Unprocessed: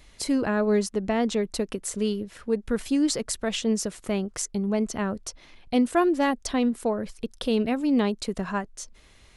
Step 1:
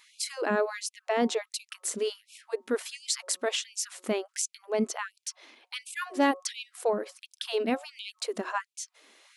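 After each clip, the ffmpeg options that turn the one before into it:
ffmpeg -i in.wav -af "bandreject=frequency=182.8:width_type=h:width=4,bandreject=frequency=365.6:width_type=h:width=4,bandreject=frequency=548.4:width_type=h:width=4,bandreject=frequency=731.2:width_type=h:width=4,bandreject=frequency=914:width_type=h:width=4,bandreject=frequency=1096.8:width_type=h:width=4,bandreject=frequency=1279.6:width_type=h:width=4,afftfilt=real='re*gte(b*sr/1024,210*pow(2300/210,0.5+0.5*sin(2*PI*1.4*pts/sr)))':imag='im*gte(b*sr/1024,210*pow(2300/210,0.5+0.5*sin(2*PI*1.4*pts/sr)))':win_size=1024:overlap=0.75" out.wav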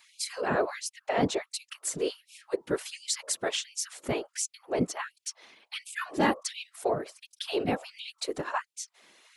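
ffmpeg -i in.wav -af "afftfilt=real='hypot(re,im)*cos(2*PI*random(0))':imag='hypot(re,im)*sin(2*PI*random(1))':win_size=512:overlap=0.75,volume=5.5dB" out.wav

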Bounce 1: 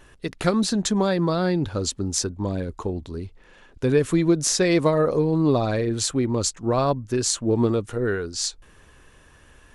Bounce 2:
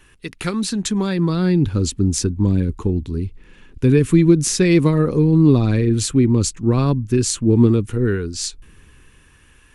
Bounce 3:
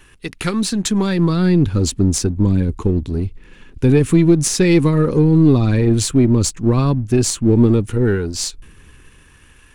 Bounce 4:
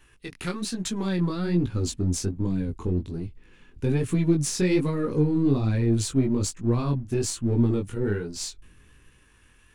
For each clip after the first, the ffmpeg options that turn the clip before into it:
ffmpeg -i in.wav -filter_complex "[0:a]equalizer=frequency=630:width_type=o:width=0.67:gain=-10,equalizer=frequency=2500:width_type=o:width=0.67:gain=6,equalizer=frequency=10000:width_type=o:width=0.67:gain=6,acrossover=split=370|2200[link_01][link_02][link_03];[link_01]dynaudnorm=framelen=310:gausssize=9:maxgain=14dB[link_04];[link_04][link_02][link_03]amix=inputs=3:normalize=0,volume=-1dB" out.wav
ffmpeg -i in.wav -filter_complex "[0:a]aeval=exprs='if(lt(val(0),0),0.708*val(0),val(0))':channel_layout=same,asplit=2[link_01][link_02];[link_02]alimiter=limit=-11.5dB:level=0:latency=1:release=157,volume=1dB[link_03];[link_01][link_03]amix=inputs=2:normalize=0,volume=-2dB" out.wav
ffmpeg -i in.wav -af "flanger=delay=16.5:depth=6.1:speed=1.2,volume=-7dB" out.wav

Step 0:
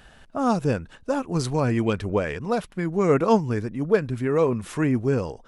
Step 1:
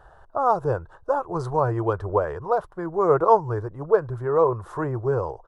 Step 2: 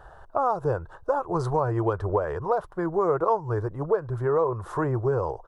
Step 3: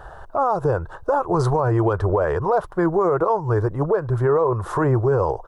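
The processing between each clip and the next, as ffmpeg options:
ffmpeg -i in.wav -af "firequalizer=gain_entry='entry(120,0);entry(240,-22);entry(340,0);entry(1000,8);entry(1500,-1);entry(2300,-22);entry(3500,-15)':delay=0.05:min_phase=1" out.wav
ffmpeg -i in.wav -af "acompressor=threshold=-24dB:ratio=4,volume=3dB" out.wav
ffmpeg -i in.wav -af "alimiter=limit=-19.5dB:level=0:latency=1:release=37,volume=8.5dB" out.wav

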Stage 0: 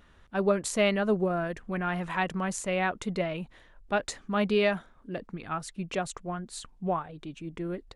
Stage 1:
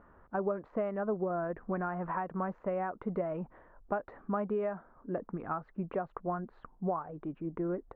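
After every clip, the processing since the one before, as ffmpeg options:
ffmpeg -i in.wav -af "lowshelf=frequency=200:gain=-10.5,acompressor=threshold=-35dB:ratio=6,lowpass=frequency=1300:width=0.5412,lowpass=frequency=1300:width=1.3066,volume=5.5dB" out.wav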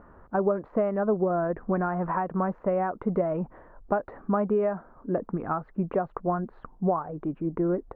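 ffmpeg -i in.wav -af "highshelf=frequency=2200:gain=-10.5,volume=8.5dB" out.wav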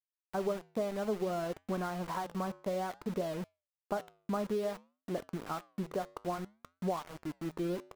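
ffmpeg -i in.wav -af "aeval=exprs='val(0)*gte(abs(val(0)),0.0251)':channel_layout=same,flanger=delay=5.4:depth=4.3:regen=-88:speed=0.58:shape=sinusoidal,volume=-4.5dB" out.wav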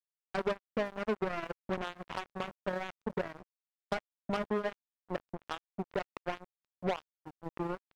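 ffmpeg -i in.wav -af "acrusher=bits=4:mix=0:aa=0.5" out.wav

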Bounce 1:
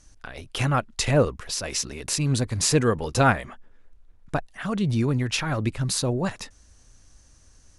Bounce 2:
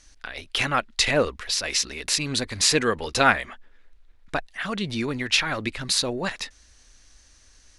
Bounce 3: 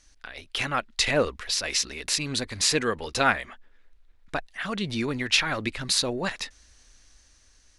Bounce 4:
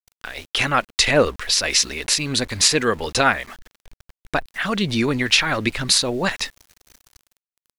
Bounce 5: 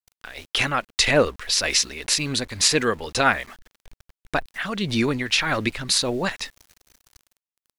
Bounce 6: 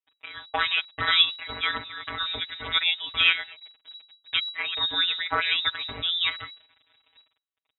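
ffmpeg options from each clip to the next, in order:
ffmpeg -i in.wav -af "equalizer=frequency=125:width_type=o:width=1:gain=-11,equalizer=frequency=2000:width_type=o:width=1:gain=7,equalizer=frequency=4000:width_type=o:width=1:gain=8,volume=-1dB" out.wav
ffmpeg -i in.wav -af "dynaudnorm=framelen=410:gausssize=5:maxgain=11.5dB,volume=-5dB" out.wav
ffmpeg -i in.wav -af "alimiter=limit=-10.5dB:level=0:latency=1:release=337,aeval=exprs='val(0)*gte(abs(val(0)),0.00398)':channel_layout=same,volume=8dB" out.wav
ffmpeg -i in.wav -af "tremolo=f=1.8:d=0.44,volume=-1dB" out.wav
ffmpeg -i in.wav -af "afftfilt=real='hypot(re,im)*cos(PI*b)':imag='0':win_size=1024:overlap=0.75,aeval=exprs='clip(val(0),-1,0.473)':channel_layout=same,lowpass=frequency=3300:width_type=q:width=0.5098,lowpass=frequency=3300:width_type=q:width=0.6013,lowpass=frequency=3300:width_type=q:width=0.9,lowpass=frequency=3300:width_type=q:width=2.563,afreqshift=-3900,volume=2dB" out.wav

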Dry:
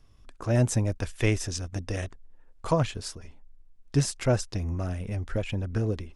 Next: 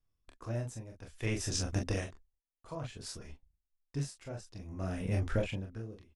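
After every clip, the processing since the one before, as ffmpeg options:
ffmpeg -i in.wav -filter_complex "[0:a]agate=range=-25dB:threshold=-43dB:ratio=16:detection=peak,asplit=2[link_01][link_02];[link_02]aecho=0:1:27|42:0.531|0.531[link_03];[link_01][link_03]amix=inputs=2:normalize=0,aeval=exprs='val(0)*pow(10,-21*(0.5-0.5*cos(2*PI*0.58*n/s))/20)':channel_layout=same" out.wav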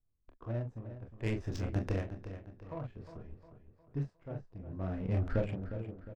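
ffmpeg -i in.wav -filter_complex "[0:a]adynamicsmooth=sensitivity=4.5:basefreq=880,asplit=2[link_01][link_02];[link_02]adelay=357,lowpass=frequency=4800:poles=1,volume=-11dB,asplit=2[link_03][link_04];[link_04]adelay=357,lowpass=frequency=4800:poles=1,volume=0.45,asplit=2[link_05][link_06];[link_06]adelay=357,lowpass=frequency=4800:poles=1,volume=0.45,asplit=2[link_07][link_08];[link_08]adelay=357,lowpass=frequency=4800:poles=1,volume=0.45,asplit=2[link_09][link_10];[link_10]adelay=357,lowpass=frequency=4800:poles=1,volume=0.45[link_11];[link_03][link_05][link_07][link_09][link_11]amix=inputs=5:normalize=0[link_12];[link_01][link_12]amix=inputs=2:normalize=0" out.wav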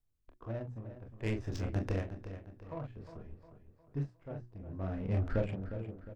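ffmpeg -i in.wav -af "bandreject=frequency=60:width_type=h:width=6,bandreject=frequency=120:width_type=h:width=6,bandreject=frequency=180:width_type=h:width=6,bandreject=frequency=240:width_type=h:width=6,bandreject=frequency=300:width_type=h:width=6,bandreject=frequency=360:width_type=h:width=6" out.wav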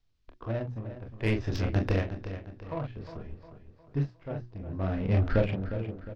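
ffmpeg -i in.wav -filter_complex "[0:a]lowpass=frequency=5000:width=0.5412,lowpass=frequency=5000:width=1.3066,highshelf=frequency=2800:gain=9,acrossover=split=2400[link_01][link_02];[link_02]asoftclip=type=tanh:threshold=-39dB[link_03];[link_01][link_03]amix=inputs=2:normalize=0,volume=7dB" out.wav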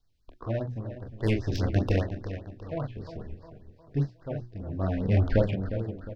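ffmpeg -i in.wav -af "afftfilt=real='re*(1-between(b*sr/1024,980*pow(2900/980,0.5+0.5*sin(2*PI*5*pts/sr))/1.41,980*pow(2900/980,0.5+0.5*sin(2*PI*5*pts/sr))*1.41))':imag='im*(1-between(b*sr/1024,980*pow(2900/980,0.5+0.5*sin(2*PI*5*pts/sr))/1.41,980*pow(2900/980,0.5+0.5*sin(2*PI*5*pts/sr))*1.41))':win_size=1024:overlap=0.75,volume=2dB" out.wav

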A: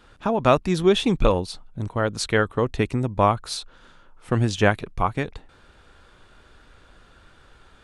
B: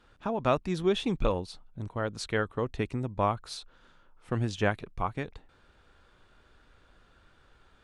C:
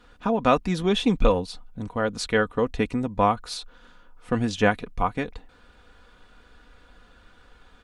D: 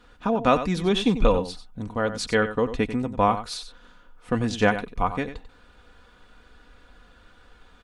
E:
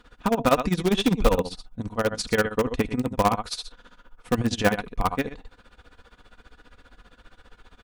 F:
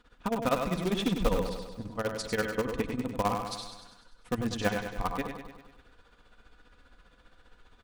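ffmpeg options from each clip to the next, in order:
ffmpeg -i in.wav -af "highshelf=frequency=8600:gain=-7,volume=-8.5dB" out.wav
ffmpeg -i in.wav -af "aecho=1:1:4.1:0.51,volume=6dB" out.wav
ffmpeg -i in.wav -af "aecho=1:1:93:0.266" out.wav
ffmpeg -i in.wav -filter_complex "[0:a]tremolo=f=15:d=0.88,asplit=2[link_01][link_02];[link_02]aeval=exprs='(mod(7.94*val(0)+1,2)-1)/7.94':channel_layout=same,volume=-9dB[link_03];[link_01][link_03]amix=inputs=2:normalize=0,volume=2dB" out.wav
ffmpeg -i in.wav -af "aecho=1:1:99|198|297|396|495|594|693:0.447|0.255|0.145|0.0827|0.0472|0.0269|0.0153,volume=-8dB" out.wav

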